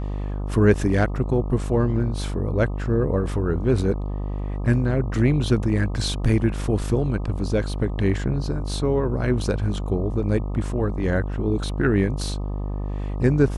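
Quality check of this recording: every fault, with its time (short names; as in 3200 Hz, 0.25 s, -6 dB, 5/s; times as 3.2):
buzz 50 Hz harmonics 25 -27 dBFS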